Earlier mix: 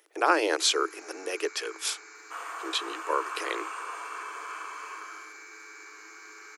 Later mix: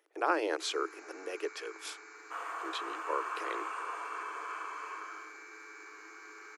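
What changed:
speech -5.5 dB; master: add high shelf 2900 Hz -10 dB

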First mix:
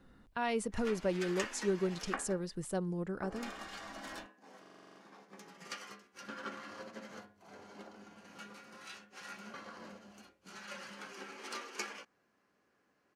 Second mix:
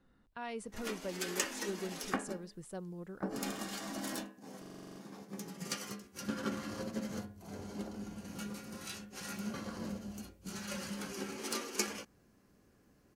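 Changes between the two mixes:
speech -8.0 dB; background: remove band-pass 1500 Hz, Q 0.65

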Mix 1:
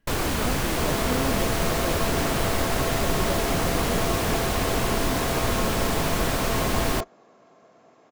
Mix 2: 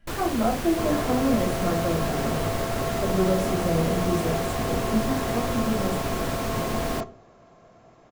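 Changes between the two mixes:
first sound -6.5 dB; second sound: remove HPF 220 Hz 12 dB/oct; reverb: on, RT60 0.40 s

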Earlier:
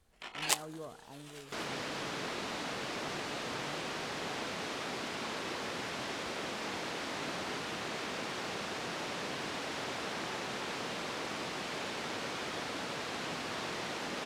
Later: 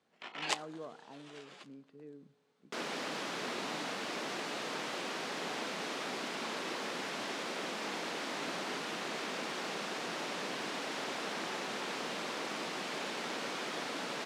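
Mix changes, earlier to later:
first sound: add air absorption 100 m; second sound: entry +1.20 s; master: add HPF 170 Hz 24 dB/oct

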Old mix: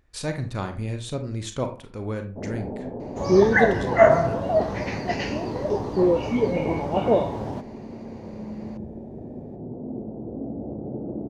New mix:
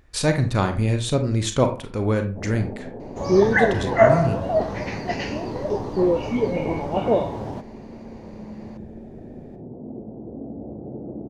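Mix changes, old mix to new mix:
speech +8.5 dB; first sound: send -7.5 dB

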